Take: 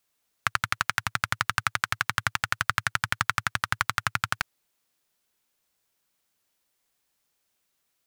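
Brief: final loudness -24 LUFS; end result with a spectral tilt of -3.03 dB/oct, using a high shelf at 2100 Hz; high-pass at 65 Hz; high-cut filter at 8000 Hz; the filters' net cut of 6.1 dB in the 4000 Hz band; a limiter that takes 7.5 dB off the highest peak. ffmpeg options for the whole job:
-af "highpass=65,lowpass=8k,highshelf=f=2.1k:g=-4,equalizer=f=4k:t=o:g=-4,volume=12dB,alimiter=limit=-2dB:level=0:latency=1"

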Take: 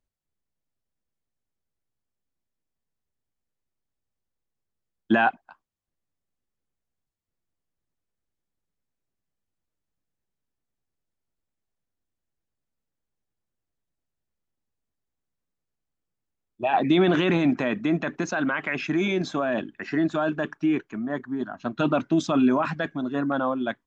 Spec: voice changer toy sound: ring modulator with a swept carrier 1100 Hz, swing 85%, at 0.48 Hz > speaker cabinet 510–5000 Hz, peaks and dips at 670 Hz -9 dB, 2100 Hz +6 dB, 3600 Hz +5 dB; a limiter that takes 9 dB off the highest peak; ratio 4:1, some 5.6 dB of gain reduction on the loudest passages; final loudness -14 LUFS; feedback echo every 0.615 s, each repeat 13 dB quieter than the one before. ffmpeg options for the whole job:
-af "acompressor=threshold=-22dB:ratio=4,alimiter=limit=-22dB:level=0:latency=1,aecho=1:1:615|1230|1845:0.224|0.0493|0.0108,aeval=exprs='val(0)*sin(2*PI*1100*n/s+1100*0.85/0.48*sin(2*PI*0.48*n/s))':c=same,highpass=510,equalizer=f=670:t=q:w=4:g=-9,equalizer=f=2.1k:t=q:w=4:g=6,equalizer=f=3.6k:t=q:w=4:g=5,lowpass=f=5k:w=0.5412,lowpass=f=5k:w=1.3066,volume=17dB"

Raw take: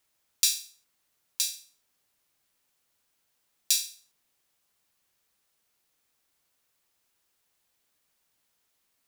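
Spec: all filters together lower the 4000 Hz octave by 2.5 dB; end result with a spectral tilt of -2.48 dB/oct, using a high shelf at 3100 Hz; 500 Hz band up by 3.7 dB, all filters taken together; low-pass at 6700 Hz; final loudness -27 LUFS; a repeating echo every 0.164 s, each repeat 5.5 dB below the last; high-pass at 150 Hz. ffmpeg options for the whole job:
-af "highpass=150,lowpass=6.7k,equalizer=f=500:t=o:g=4.5,highshelf=f=3.1k:g=6.5,equalizer=f=4k:t=o:g=-8,aecho=1:1:164|328|492|656|820|984|1148:0.531|0.281|0.149|0.079|0.0419|0.0222|0.0118,volume=3.5dB"

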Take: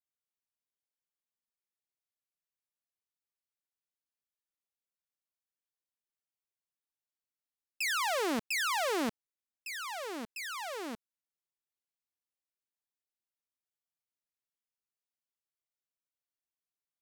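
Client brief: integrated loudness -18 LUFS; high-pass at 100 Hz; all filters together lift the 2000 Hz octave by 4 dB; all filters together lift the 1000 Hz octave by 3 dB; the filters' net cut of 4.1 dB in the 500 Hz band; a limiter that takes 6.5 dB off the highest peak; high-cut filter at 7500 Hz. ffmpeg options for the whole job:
-af "highpass=100,lowpass=7.5k,equalizer=f=500:t=o:g=-7,equalizer=f=1k:t=o:g=4.5,equalizer=f=2k:t=o:g=4,volume=17dB,alimiter=limit=-9.5dB:level=0:latency=1"

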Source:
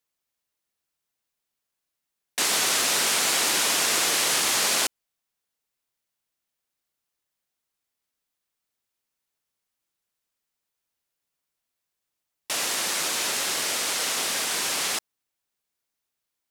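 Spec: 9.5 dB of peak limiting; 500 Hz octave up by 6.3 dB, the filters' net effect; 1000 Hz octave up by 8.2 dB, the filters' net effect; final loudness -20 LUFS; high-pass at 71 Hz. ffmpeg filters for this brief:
-af "highpass=71,equalizer=f=500:t=o:g=5,equalizer=f=1k:t=o:g=9,volume=5dB,alimiter=limit=-12dB:level=0:latency=1"

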